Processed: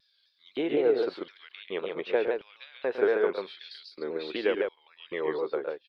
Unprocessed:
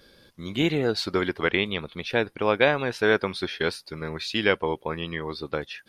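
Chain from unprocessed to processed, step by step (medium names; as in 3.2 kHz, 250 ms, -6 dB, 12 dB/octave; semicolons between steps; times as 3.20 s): fade out at the end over 0.61 s; 3.64–4.30 s: graphic EQ 125/250/500/1000/2000/4000/8000 Hz -12/+6/-4/-7/-6/+6/-4 dB; compression 6:1, threshold -25 dBFS, peak gain reduction 10.5 dB; LFO high-pass square 0.88 Hz 430–4500 Hz; distance through air 450 m; on a send: multi-tap echo 108/140 ms -11/-3.5 dB; on the sum: vibrato with a chosen wave saw down 3.9 Hz, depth 100 cents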